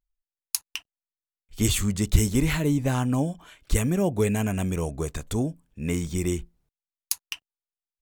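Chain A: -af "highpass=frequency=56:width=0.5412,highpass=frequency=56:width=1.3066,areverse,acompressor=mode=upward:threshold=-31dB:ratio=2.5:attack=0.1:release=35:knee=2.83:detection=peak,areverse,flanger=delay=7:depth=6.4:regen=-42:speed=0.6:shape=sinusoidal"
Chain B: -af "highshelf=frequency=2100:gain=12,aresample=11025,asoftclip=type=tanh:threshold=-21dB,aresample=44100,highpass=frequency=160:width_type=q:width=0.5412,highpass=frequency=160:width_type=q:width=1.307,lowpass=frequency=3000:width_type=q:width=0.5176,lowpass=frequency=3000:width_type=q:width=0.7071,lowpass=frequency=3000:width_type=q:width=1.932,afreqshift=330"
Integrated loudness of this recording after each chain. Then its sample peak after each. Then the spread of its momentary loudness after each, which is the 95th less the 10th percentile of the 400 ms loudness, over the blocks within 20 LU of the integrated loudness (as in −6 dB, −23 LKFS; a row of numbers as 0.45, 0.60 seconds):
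−30.5, −31.0 LKFS; −8.5, −16.5 dBFS; 9, 11 LU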